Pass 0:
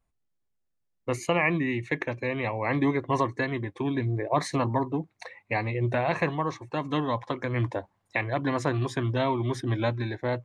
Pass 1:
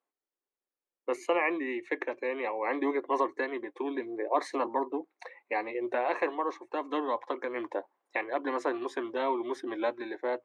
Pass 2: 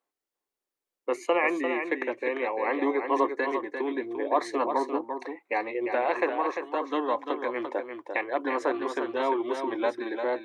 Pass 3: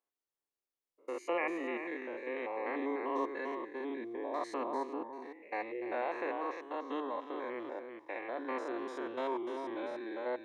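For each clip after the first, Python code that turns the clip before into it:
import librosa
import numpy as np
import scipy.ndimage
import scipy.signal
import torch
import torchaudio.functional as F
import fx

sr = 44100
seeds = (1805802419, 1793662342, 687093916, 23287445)

y1 = scipy.signal.sosfilt(scipy.signal.cheby2(4, 40, 160.0, 'highpass', fs=sr, output='sos'), x)
y1 = fx.high_shelf(y1, sr, hz=2400.0, db=-11.5)
y1 = fx.notch(y1, sr, hz=650.0, q=12.0)
y2 = y1 + 10.0 ** (-7.0 / 20.0) * np.pad(y1, (int(346 * sr / 1000.0), 0))[:len(y1)]
y2 = F.gain(torch.from_numpy(y2), 3.0).numpy()
y3 = fx.spec_steps(y2, sr, hold_ms=100)
y3 = F.gain(torch.from_numpy(y3), -7.5).numpy()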